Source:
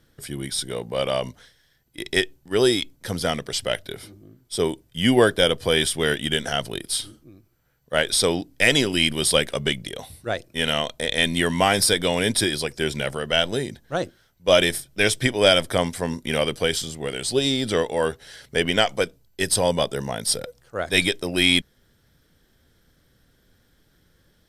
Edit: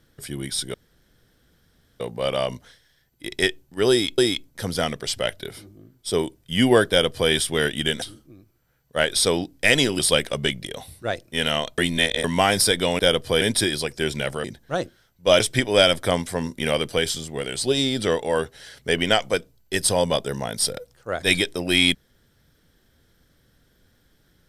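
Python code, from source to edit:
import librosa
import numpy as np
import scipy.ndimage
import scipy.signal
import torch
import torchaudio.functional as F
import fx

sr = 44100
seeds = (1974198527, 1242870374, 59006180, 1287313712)

y = fx.edit(x, sr, fx.insert_room_tone(at_s=0.74, length_s=1.26),
    fx.repeat(start_s=2.64, length_s=0.28, count=2),
    fx.duplicate(start_s=5.35, length_s=0.42, to_s=12.21),
    fx.cut(start_s=6.48, length_s=0.51),
    fx.cut(start_s=8.96, length_s=0.25),
    fx.reverse_span(start_s=11.0, length_s=0.46),
    fx.cut(start_s=13.24, length_s=0.41),
    fx.cut(start_s=14.61, length_s=0.46), tone=tone)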